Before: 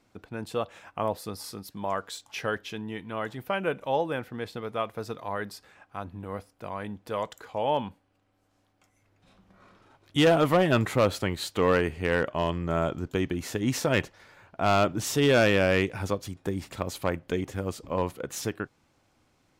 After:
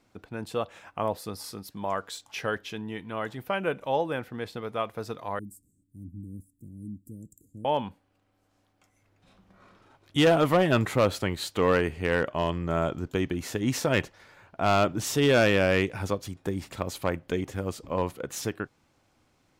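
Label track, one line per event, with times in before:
5.390000	7.650000	Chebyshev band-stop 300–7700 Hz, order 4

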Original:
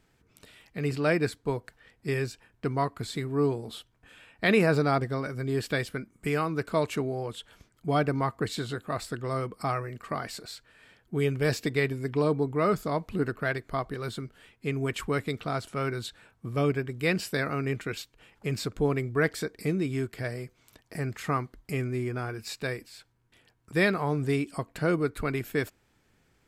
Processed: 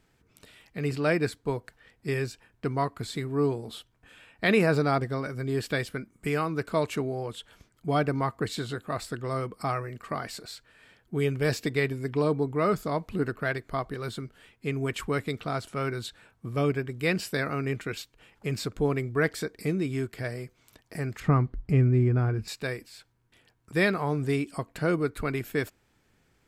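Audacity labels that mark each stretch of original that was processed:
21.200000	22.480000	RIAA curve playback

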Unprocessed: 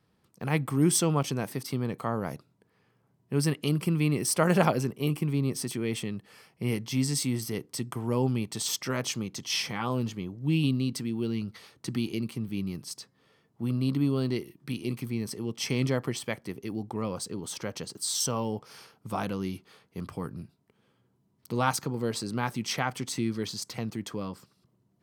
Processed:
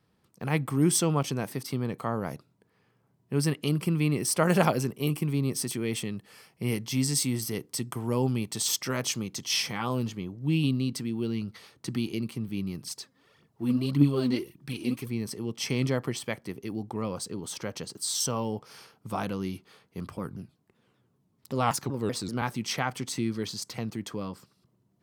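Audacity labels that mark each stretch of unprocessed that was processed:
4.480000	10.070000	high shelf 5000 Hz +5 dB
12.840000	15.090000	phaser 1.7 Hz, delay 4.4 ms, feedback 63%
20.170000	22.420000	shaped vibrato saw down 5.2 Hz, depth 250 cents

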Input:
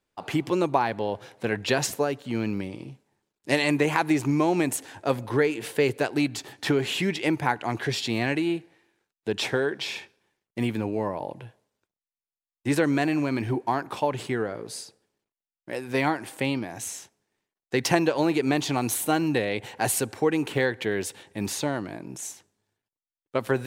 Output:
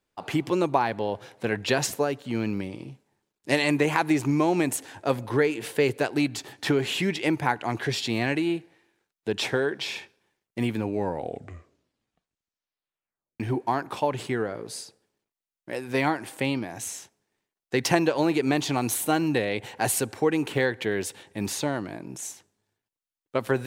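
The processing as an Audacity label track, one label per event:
10.860000	10.860000	tape stop 2.54 s

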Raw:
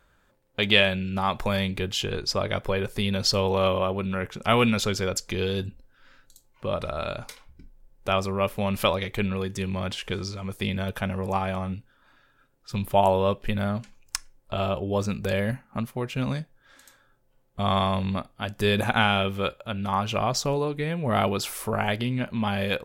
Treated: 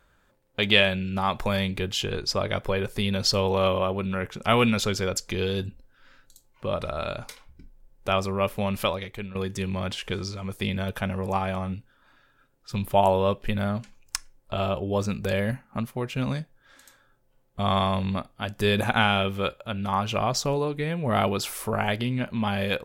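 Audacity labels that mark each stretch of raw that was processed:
8.600000	9.350000	fade out linear, to -13 dB

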